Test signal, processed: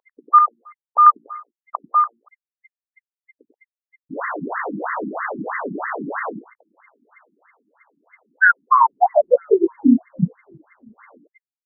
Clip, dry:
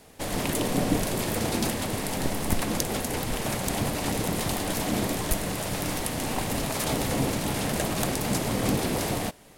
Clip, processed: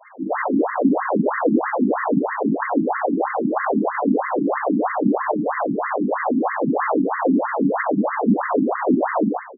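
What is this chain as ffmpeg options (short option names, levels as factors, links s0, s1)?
-af "lowpass=4900,aeval=exprs='0.316*sin(PI/2*3.16*val(0)/0.316)':c=same,bandreject=f=58:t=h:w=4,bandreject=f=116:t=h:w=4,bandreject=f=174:t=h:w=4,bandreject=f=232:t=h:w=4,bandreject=f=290:t=h:w=4,bandreject=f=348:t=h:w=4,bandreject=f=406:t=h:w=4,bandreject=f=464:t=h:w=4,bandreject=f=522:t=h:w=4,bandreject=f=580:t=h:w=4,bandreject=f=638:t=h:w=4,bandreject=f=696:t=h:w=4,bandreject=f=754:t=h:w=4,bandreject=f=812:t=h:w=4,bandreject=f=870:t=h:w=4,bandreject=f=928:t=h:w=4,bandreject=f=986:t=h:w=4,bandreject=f=1044:t=h:w=4,bandreject=f=1102:t=h:w=4,bandreject=f=1160:t=h:w=4,bandreject=f=1218:t=h:w=4,bandreject=f=1276:t=h:w=4,bandreject=f=1334:t=h:w=4,bandreject=f=1392:t=h:w=4,bandreject=f=1450:t=h:w=4,bandreject=f=1508:t=h:w=4,bandreject=f=1566:t=h:w=4,bandreject=f=1624:t=h:w=4,bandreject=f=1682:t=h:w=4,bandreject=f=1740:t=h:w=4,bandreject=f=1798:t=h:w=4,bandreject=f=1856:t=h:w=4,bandreject=f=1914:t=h:w=4,bandreject=f=1972:t=h:w=4,bandreject=f=2030:t=h:w=4,bandreject=f=2088:t=h:w=4,bandreject=f=2146:t=h:w=4,adynamicequalizer=threshold=0.0355:dfrequency=1900:dqfactor=0.92:tfrequency=1900:tqfactor=0.92:attack=5:release=100:ratio=0.375:range=2:mode=cutabove:tftype=bell,acrusher=bits=7:mix=0:aa=0.000001,aeval=exprs='val(0)+0.00447*sin(2*PI*2100*n/s)':c=same,acompressor=threshold=0.112:ratio=6,equalizer=f=3300:t=o:w=1.4:g=6.5,bandreject=f=360:w=12,aecho=1:1:95:0.596,dynaudnorm=f=110:g=5:m=2.66,afftfilt=real='re*between(b*sr/1024,240*pow(1500/240,0.5+0.5*sin(2*PI*3.1*pts/sr))/1.41,240*pow(1500/240,0.5+0.5*sin(2*PI*3.1*pts/sr))*1.41)':imag='im*between(b*sr/1024,240*pow(1500/240,0.5+0.5*sin(2*PI*3.1*pts/sr))/1.41,240*pow(1500/240,0.5+0.5*sin(2*PI*3.1*pts/sr))*1.41)':win_size=1024:overlap=0.75,volume=1.26"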